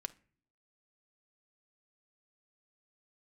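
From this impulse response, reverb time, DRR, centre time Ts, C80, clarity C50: not exponential, 10.0 dB, 2 ms, 26.0 dB, 19.0 dB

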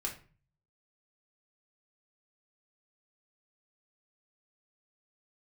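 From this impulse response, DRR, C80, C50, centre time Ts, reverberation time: -1.5 dB, 15.0 dB, 10.0 dB, 20 ms, 0.40 s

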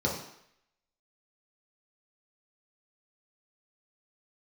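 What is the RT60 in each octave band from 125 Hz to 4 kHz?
0.55, 0.60, 0.70, 0.75, 0.80, 0.75 s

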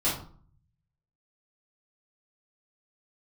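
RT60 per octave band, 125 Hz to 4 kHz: 1.2, 0.65, 0.45, 0.50, 0.35, 0.30 s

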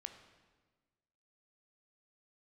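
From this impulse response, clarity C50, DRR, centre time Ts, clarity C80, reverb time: 9.0 dB, 6.5 dB, 19 ms, 10.5 dB, 1.4 s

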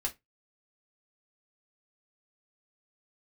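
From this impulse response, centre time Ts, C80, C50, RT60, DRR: 9 ms, 30.5 dB, 19.0 dB, 0.15 s, -0.5 dB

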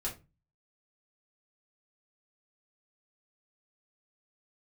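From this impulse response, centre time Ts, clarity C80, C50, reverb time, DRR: 18 ms, 18.5 dB, 11.0 dB, 0.25 s, -5.5 dB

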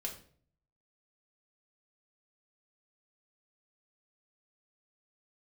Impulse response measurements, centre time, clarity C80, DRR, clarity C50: 17 ms, 14.0 dB, -0.5 dB, 9.5 dB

